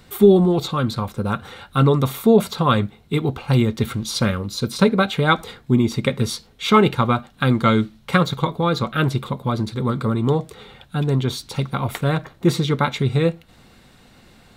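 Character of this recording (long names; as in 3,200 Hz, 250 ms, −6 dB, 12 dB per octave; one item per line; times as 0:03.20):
background noise floor −51 dBFS
spectral slope −5.5 dB per octave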